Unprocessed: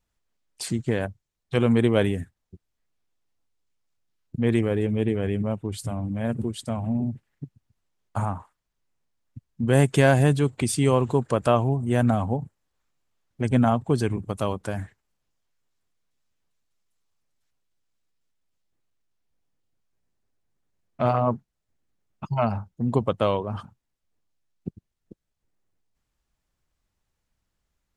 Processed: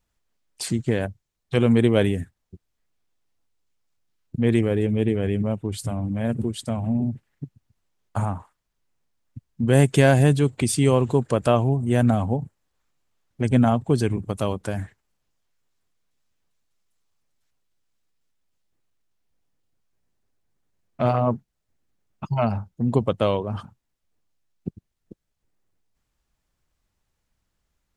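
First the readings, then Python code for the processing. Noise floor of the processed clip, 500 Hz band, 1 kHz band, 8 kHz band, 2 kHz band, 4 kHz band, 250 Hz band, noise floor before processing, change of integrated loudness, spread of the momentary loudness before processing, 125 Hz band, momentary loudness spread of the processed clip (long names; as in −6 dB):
−77 dBFS, +1.5 dB, −0.5 dB, +2.5 dB, +0.5 dB, +2.0 dB, +2.5 dB, −80 dBFS, +2.0 dB, 17 LU, +2.5 dB, 17 LU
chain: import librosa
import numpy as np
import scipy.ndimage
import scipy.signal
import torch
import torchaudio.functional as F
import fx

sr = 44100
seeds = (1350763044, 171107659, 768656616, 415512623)

y = fx.dynamic_eq(x, sr, hz=1100.0, q=1.1, threshold_db=-38.0, ratio=4.0, max_db=-4)
y = y * librosa.db_to_amplitude(2.5)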